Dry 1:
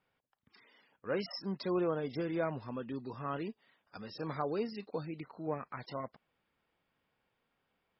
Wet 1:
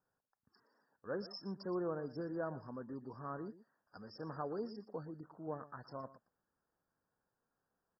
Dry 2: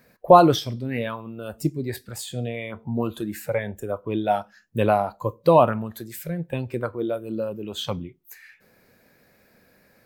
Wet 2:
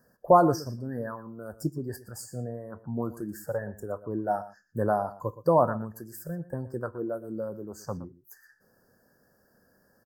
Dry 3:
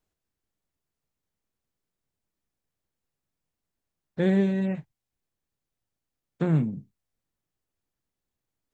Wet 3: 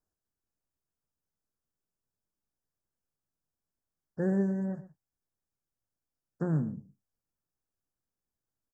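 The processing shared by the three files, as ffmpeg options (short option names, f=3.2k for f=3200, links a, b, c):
-filter_complex "[0:a]asuperstop=centerf=2900:order=20:qfactor=1,asplit=2[a][b];[b]aecho=0:1:119:0.158[c];[a][c]amix=inputs=2:normalize=0,volume=-6dB"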